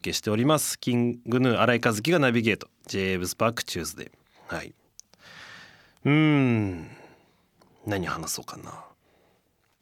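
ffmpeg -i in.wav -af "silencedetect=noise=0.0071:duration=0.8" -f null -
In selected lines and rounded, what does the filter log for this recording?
silence_start: 8.88
silence_end: 9.82 | silence_duration: 0.94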